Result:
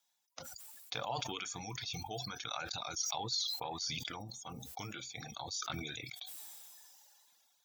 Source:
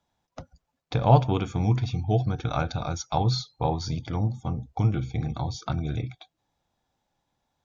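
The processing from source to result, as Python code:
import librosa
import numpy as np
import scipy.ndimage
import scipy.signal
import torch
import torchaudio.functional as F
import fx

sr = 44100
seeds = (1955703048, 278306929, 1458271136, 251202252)

p1 = fx.wow_flutter(x, sr, seeds[0], rate_hz=2.1, depth_cents=23.0)
p2 = np.diff(p1, prepend=0.0)
p3 = fx.over_compress(p2, sr, threshold_db=-48.0, ratio=-1.0)
p4 = p2 + (p3 * 10.0 ** (0.0 / 20.0))
p5 = fx.dereverb_blind(p4, sr, rt60_s=1.5)
y = fx.sustainer(p5, sr, db_per_s=22.0)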